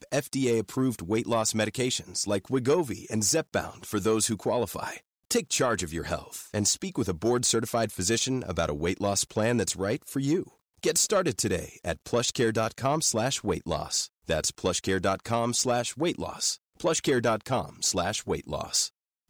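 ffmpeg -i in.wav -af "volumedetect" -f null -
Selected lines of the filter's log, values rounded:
mean_volume: -28.2 dB
max_volume: -15.3 dB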